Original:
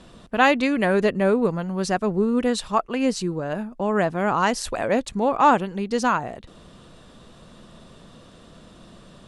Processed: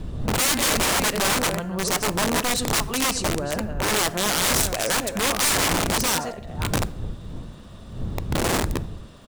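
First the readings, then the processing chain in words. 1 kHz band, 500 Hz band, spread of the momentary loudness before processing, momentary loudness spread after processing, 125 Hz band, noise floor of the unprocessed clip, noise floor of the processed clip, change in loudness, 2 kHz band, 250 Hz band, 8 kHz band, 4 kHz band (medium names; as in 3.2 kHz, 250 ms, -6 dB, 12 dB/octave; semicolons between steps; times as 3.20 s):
-3.5 dB, -4.5 dB, 9 LU, 14 LU, +4.0 dB, -49 dBFS, -41 dBFS, 0.0 dB, +2.0 dB, -4.0 dB, +15.5 dB, +10.5 dB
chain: chunks repeated in reverse 278 ms, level -9.5 dB; wind noise 100 Hz -22 dBFS; bass shelf 170 Hz -5 dB; de-hum 348.1 Hz, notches 22; speakerphone echo 130 ms, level -21 dB; crackle 590 per s -52 dBFS; integer overflow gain 17.5 dB; dynamic bell 8.7 kHz, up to +6 dB, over -41 dBFS, Q 0.78; plate-style reverb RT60 0.63 s, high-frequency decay 0.75×, DRR 17.5 dB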